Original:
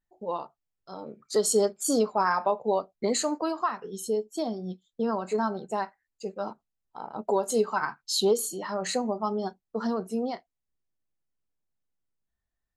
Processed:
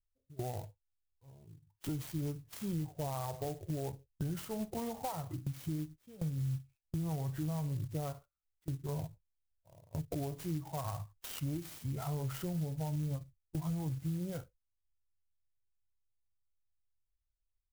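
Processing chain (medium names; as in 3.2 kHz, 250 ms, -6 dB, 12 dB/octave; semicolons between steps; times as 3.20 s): FFT filter 140 Hz 0 dB, 320 Hz -27 dB, 690 Hz -27 dB, 4 kHz -19 dB; tape speed -28%; gate with hold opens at -46 dBFS; compression, threshold -56 dBFS, peak gain reduction 15 dB; peaking EQ 5.9 kHz -14 dB 2.2 oct; in parallel at -2 dB: peak limiter -54 dBFS, peak gain reduction 8.5 dB; on the sum: sampling jitter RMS 0.075 ms; trim +17.5 dB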